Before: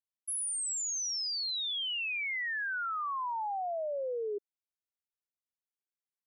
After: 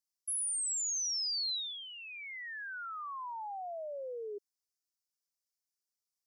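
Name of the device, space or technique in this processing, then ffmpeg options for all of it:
over-bright horn tweeter: -af "highshelf=f=3900:t=q:w=3:g=9.5,alimiter=level_in=1.19:limit=0.0631:level=0:latency=1,volume=0.841,volume=0.501"

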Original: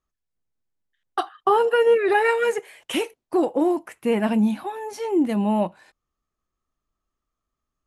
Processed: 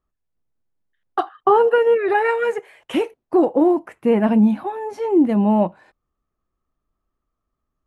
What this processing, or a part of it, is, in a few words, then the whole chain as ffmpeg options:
through cloth: -filter_complex "[0:a]asettb=1/sr,asplit=3[s0][s1][s2];[s0]atrim=end=1.784[s3];[s1]atrim=start=1.78:end=2.92,asetpts=PTS-STARTPTS,afade=t=in:d=0.004:c=qsin,afade=t=out:st=1.136:d=0.004:c=qsin,equalizer=f=240:w=0.45:g=-5.5[s4];[s2]atrim=start=2.916[s5];[s3][s4]acrossfade=d=0.004:c1=hsin:c2=qsin[s6];[s6][s5]acrossfade=d=0.004:c1=qsin:c2=hsin,highshelf=f=2600:g=-16.5,volume=1.88"

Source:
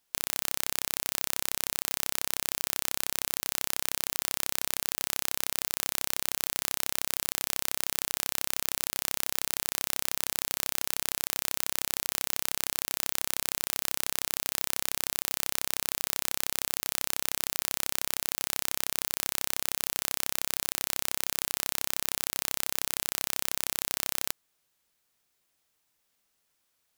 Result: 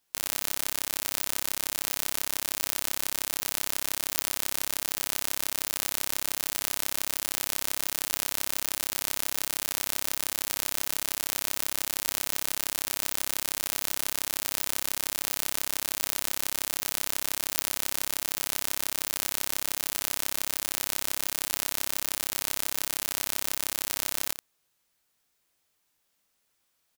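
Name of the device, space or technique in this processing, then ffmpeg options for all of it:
slapback doubling: -filter_complex "[0:a]asplit=3[s0][s1][s2];[s1]adelay=20,volume=0.398[s3];[s2]adelay=84,volume=0.355[s4];[s0][s3][s4]amix=inputs=3:normalize=0"

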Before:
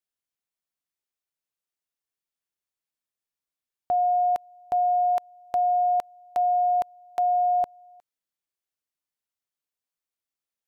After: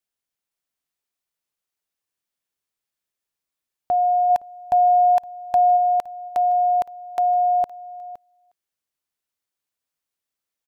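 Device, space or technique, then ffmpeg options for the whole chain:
ducked delay: -filter_complex "[0:a]asplit=3[s0][s1][s2];[s0]afade=t=out:st=4.29:d=0.02[s3];[s1]aecho=1:1:1.2:0.64,afade=t=in:st=4.29:d=0.02,afade=t=out:st=5.76:d=0.02[s4];[s2]afade=t=in:st=5.76:d=0.02[s5];[s3][s4][s5]amix=inputs=3:normalize=0,asplit=3[s6][s7][s8];[s7]adelay=515,volume=0.562[s9];[s8]apad=whole_len=493406[s10];[s9][s10]sidechaincompress=threshold=0.00708:ratio=3:attack=16:release=1250[s11];[s6][s11]amix=inputs=2:normalize=0,volume=1.5"

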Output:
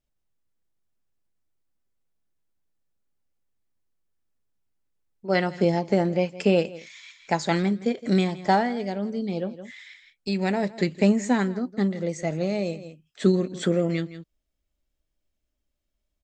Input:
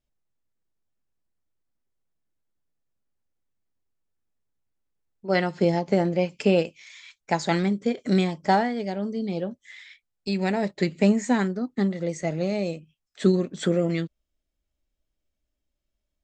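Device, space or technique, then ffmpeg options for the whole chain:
ducked delay: -filter_complex "[0:a]asplit=3[s0][s1][s2];[s1]adelay=165,volume=0.447[s3];[s2]apad=whole_len=723281[s4];[s3][s4]sidechaincompress=threshold=0.0141:ratio=8:attack=11:release=229[s5];[s0][s5]amix=inputs=2:normalize=0"

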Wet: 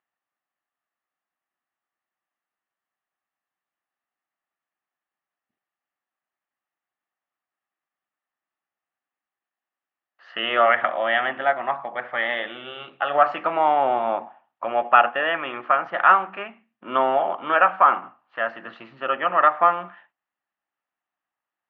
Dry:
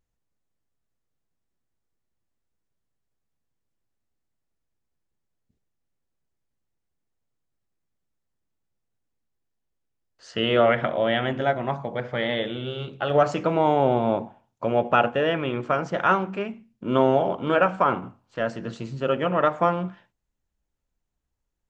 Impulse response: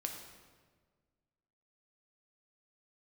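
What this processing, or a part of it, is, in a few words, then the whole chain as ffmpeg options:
phone earpiece: -af "highpass=430,equalizer=f=450:t=q:w=4:g=-9,equalizer=f=760:t=q:w=4:g=7,equalizer=f=1200:t=q:w=4:g=10,equalizer=f=1800:t=q:w=4:g=9,equalizer=f=2800:t=q:w=4:g=4,lowpass=f=3200:w=0.5412,lowpass=f=3200:w=1.3066,volume=0.891"

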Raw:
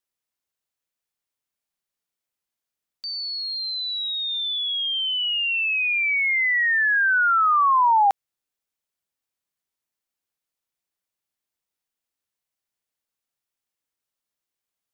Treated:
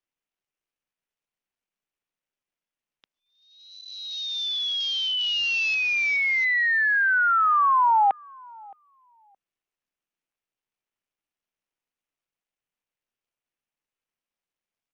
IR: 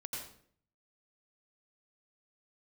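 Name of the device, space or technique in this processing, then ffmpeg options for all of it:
Bluetooth headset: -filter_complex "[0:a]asettb=1/sr,asplit=3[s0][s1][s2];[s0]atrim=end=7.164[s3];[s1]atrim=start=7.16:end=8.02,asetpts=PTS-STARTPTS,afade=t=in:d=0.004:c=qsin,afade=t=out:st=0.856:d=0.004:c=qsin,highpass=150[s4];[s2]atrim=start=8.016[s5];[s3][s4]acrossfade=d=0.004:c1=hsin:c2=qsin[s6];[s6][s5]acrossfade=d=0.004:c1=qsin:c2=hsin,highpass=180,asplit=2[s7][s8];[s8]adelay=619,lowpass=f=900:p=1,volume=0.0794,asplit=2[s9][s10];[s10]adelay=619,lowpass=f=900:p=1,volume=0.24[s11];[s7][s9][s11]amix=inputs=3:normalize=0,aresample=8000,aresample=44100,volume=0.841" -ar 48000 -c:a sbc -b:a 64k

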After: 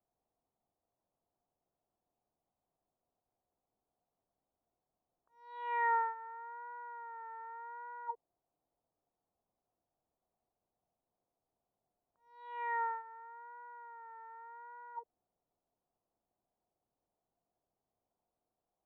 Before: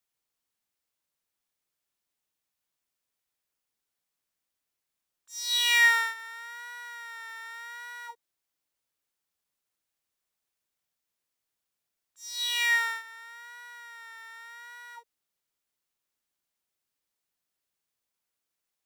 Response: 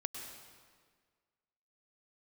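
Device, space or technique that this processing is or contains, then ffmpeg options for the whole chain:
under water: -af "lowpass=f=900:w=0.5412,lowpass=f=900:w=1.3066,equalizer=f=710:t=o:w=0.22:g=9,volume=2.24"

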